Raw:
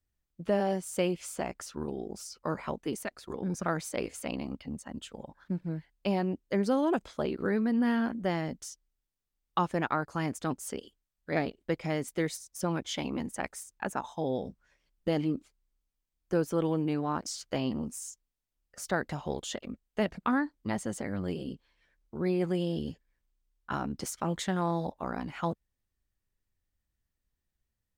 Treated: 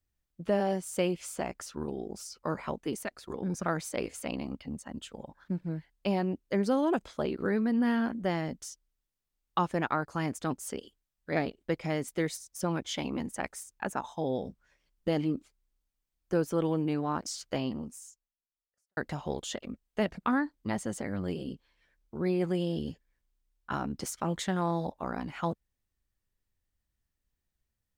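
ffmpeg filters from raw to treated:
-filter_complex "[0:a]asplit=2[s0][s1];[s0]atrim=end=18.97,asetpts=PTS-STARTPTS,afade=t=out:st=17.53:d=1.44:c=qua[s2];[s1]atrim=start=18.97,asetpts=PTS-STARTPTS,afade=t=in:d=0.004:c=hsin[s3];[s2][s3]concat=n=2:v=0:a=1"

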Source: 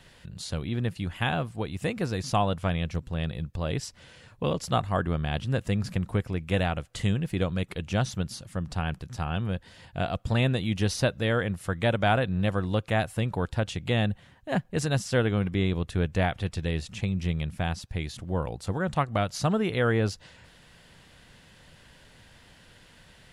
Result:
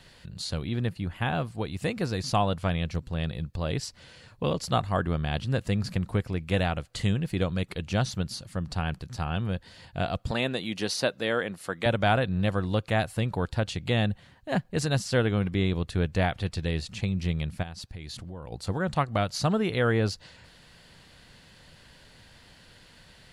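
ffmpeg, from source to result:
-filter_complex "[0:a]asettb=1/sr,asplit=3[s0][s1][s2];[s0]atrim=end=0.894[s3];[s1]atrim=start=0.89:end=1.35,asetpts=PTS-STARTPTS,afade=t=in:d=0.004:c=qsin,afade=t=out:st=0.456:d=0.004:c=qsin,equalizer=f=5900:t=o:w=2.3:g=-8.5[s4];[s2]atrim=start=1.346[s5];[s3][s4]acrossfade=d=0.004:c1=hsin:c2=qsin[s6];[s6][s5]acrossfade=d=0.004:c1=qsin:c2=hsin,asettb=1/sr,asplit=3[s7][s8][s9];[s7]atrim=end=10.314[s10];[s8]atrim=start=10.31:end=11.86,asetpts=PTS-STARTPTS,afade=t=in:d=0.004:c=qsin,afade=t=out:st=1.546:d=0.004:c=qsin,highpass=250[s11];[s9]atrim=start=11.856[s12];[s10][s11]acrossfade=d=0.004:c1=hsin:c2=qsin[s13];[s13][s12]acrossfade=d=0.004:c1=qsin:c2=hsin,asplit=3[s14][s15][s16];[s14]afade=t=out:st=17.62:d=0.02[s17];[s15]acompressor=threshold=0.0158:ratio=5:attack=3.2:release=140:knee=1:detection=peak,afade=t=in:st=17.62:d=0.02,afade=t=out:st=18.51:d=0.02[s18];[s16]afade=t=in:st=18.51:d=0.02[s19];[s17][s18][s19]amix=inputs=3:normalize=0,equalizer=f=4400:w=5.3:g=7"

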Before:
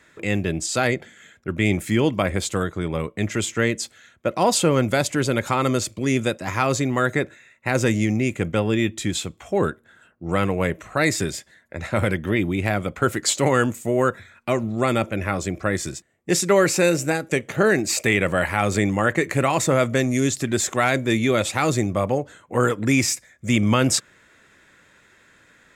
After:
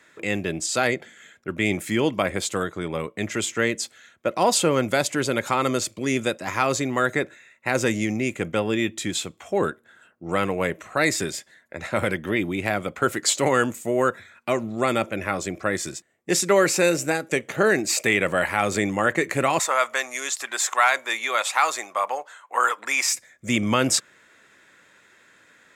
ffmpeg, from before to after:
-filter_complex "[0:a]asettb=1/sr,asplit=3[s0][s1][s2];[s0]atrim=end=19.594[s3];[s1]atrim=start=19.59:end=23.13,asetpts=PTS-STARTPTS,afade=t=in:d=0.004:c=qsin,afade=t=out:st=3.536:d=0.004:c=qsin,highpass=f=960:t=q:w=2.1[s4];[s2]atrim=start=23.126[s5];[s3][s4]acrossfade=d=0.004:c1=hsin:c2=qsin[s6];[s6][s5]acrossfade=d=0.004:c1=qsin:c2=hsin,highpass=f=270:p=1"

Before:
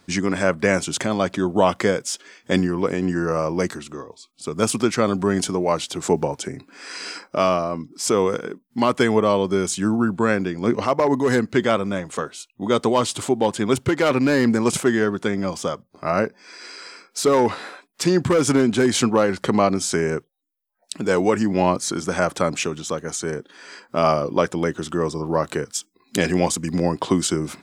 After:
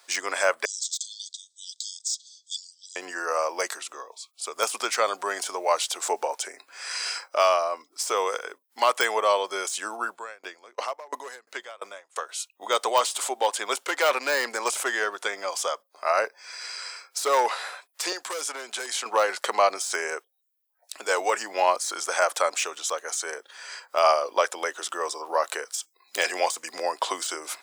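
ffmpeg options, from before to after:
-filter_complex "[0:a]asettb=1/sr,asplit=3[s0][s1][s2];[s0]atrim=end=0.654[s3];[s1]atrim=start=0.65:end=2.96,asetpts=PTS-STARTPTS,afade=t=in:d=0.004:c=qsin,afade=t=out:st=2.306:d=0.004:c=qsin,asuperpass=centerf=5500:order=20:qfactor=1.1[s4];[s2]atrim=start=2.956[s5];[s3][s4]acrossfade=d=0.004:c1=hsin:c2=qsin[s6];[s6][s5]acrossfade=d=0.004:c1=qsin:c2=hsin,asettb=1/sr,asplit=3[s7][s8][s9];[s7]atrim=end=10.094[s10];[s8]atrim=start=10.09:end=12.29,asetpts=PTS-STARTPTS,afade=t=in:d=0.004:c=qsin,afade=t=out:st=2.196:d=0.004:c=qsin,aeval=exprs='val(0)*pow(10,-30*if(lt(mod(2.9*n/s,1),2*abs(2.9)/1000),1-mod(2.9*n/s,1)/(2*abs(2.9)/1000),(mod(2.9*n/s,1)-2*abs(2.9)/1000)/(1-2*abs(2.9)/1000))/20)':c=same[s11];[s9]atrim=start=12.286[s12];[s10][s11]acrossfade=d=0.004:c1=hsin:c2=qsin[s13];[s13][s12]acrossfade=d=0.004:c1=qsin:c2=hsin,asettb=1/sr,asplit=3[s14][s15][s16];[s14]atrim=end=18.124[s17];[s15]atrim=start=18.12:end=19.06,asetpts=PTS-STARTPTS,afade=t=in:d=0.004:c=qsin,afade=t=out:st=0.936:d=0.004:c=qsin,acrossover=split=500|3800[s18][s19][s20];[s18]acompressor=threshold=0.0398:ratio=4[s21];[s19]acompressor=threshold=0.02:ratio=4[s22];[s20]acompressor=threshold=0.0141:ratio=4[s23];[s21][s22][s23]amix=inputs=3:normalize=0[s24];[s16]atrim=start=19.056[s25];[s17][s24]acrossfade=d=0.004:c1=hsin:c2=qsin[s26];[s26][s25]acrossfade=d=0.004:c1=qsin:c2=hsin,deesser=0.55,highpass=f=580:w=0.5412,highpass=f=580:w=1.3066,highshelf=f=6000:g=8.5"

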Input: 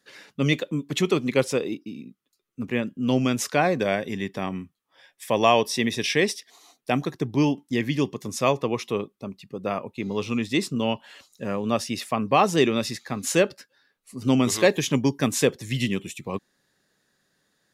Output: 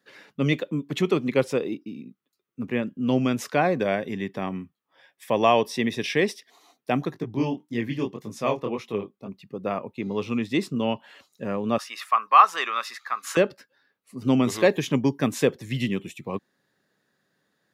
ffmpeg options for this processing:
-filter_complex "[0:a]asplit=3[s0][s1][s2];[s0]afade=t=out:st=7.14:d=0.02[s3];[s1]flanger=delay=17.5:depth=8:speed=1.8,afade=t=in:st=7.14:d=0.02,afade=t=out:st=9.27:d=0.02[s4];[s2]afade=t=in:st=9.27:d=0.02[s5];[s3][s4][s5]amix=inputs=3:normalize=0,asettb=1/sr,asplit=3[s6][s7][s8];[s6]atrim=end=11.784[s9];[s7]atrim=start=11.78:end=13.37,asetpts=PTS-STARTPTS,afade=t=in:d=0.004:c=qsin,afade=t=out:st=1.586:d=0.004:c=qsin,highpass=f=1200:t=q:w=4.3[s10];[s8]atrim=start=13.366[s11];[s9][s10]acrossfade=d=0.004:c1=hsin:c2=qsin[s12];[s12][s11]acrossfade=d=0.004:c1=qsin:c2=hsin,highpass=100,equalizer=f=7900:w=0.48:g=-9"

